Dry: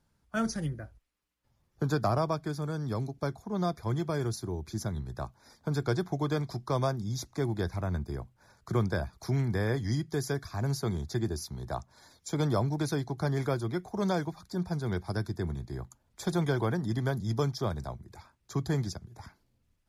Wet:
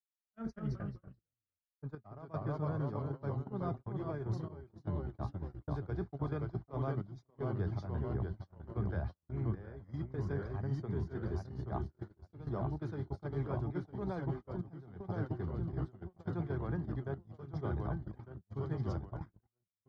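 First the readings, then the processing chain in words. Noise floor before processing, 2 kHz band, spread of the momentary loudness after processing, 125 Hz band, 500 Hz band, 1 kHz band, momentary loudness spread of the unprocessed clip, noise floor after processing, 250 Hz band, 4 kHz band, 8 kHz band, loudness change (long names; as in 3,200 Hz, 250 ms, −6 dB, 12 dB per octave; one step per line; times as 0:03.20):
−73 dBFS, −12.5 dB, 9 LU, −6.0 dB, −8.5 dB, −9.5 dB, 10 LU, below −85 dBFS, −8.0 dB, below −20 dB, below −25 dB, −7.5 dB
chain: low-shelf EQ 160 Hz +5 dB
in parallel at −11 dB: hard clipping −24 dBFS, distortion −14 dB
on the sum: low-pass filter 1,900 Hz 12 dB per octave
tuned comb filter 410 Hz, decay 0.16 s, harmonics all, mix 60%
reversed playback
downward compressor 6 to 1, threshold −40 dBFS, peak gain reduction 13.5 dB
reversed playback
delay with pitch and tempo change per echo 185 ms, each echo −1 semitone, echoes 3
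noise gate −41 dBFS, range −52 dB
gate pattern "xxxxxxxxxx..x" 77 BPM −12 dB
level +4 dB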